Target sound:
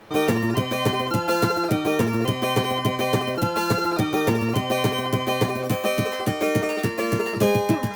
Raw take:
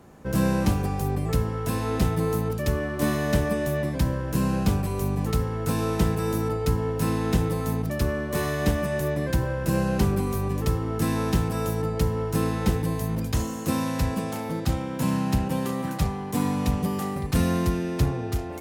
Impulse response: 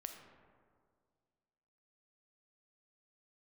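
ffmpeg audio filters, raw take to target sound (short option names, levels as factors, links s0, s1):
-filter_complex "[0:a]asplit=2[s0][s1];[1:a]atrim=start_sample=2205,atrim=end_sample=3528,adelay=22[s2];[s1][s2]afir=irnorm=-1:irlink=0,volume=1.68[s3];[s0][s3]amix=inputs=2:normalize=0,asetrate=103194,aresample=44100" -ar 48000 -c:a libopus -b:a 64k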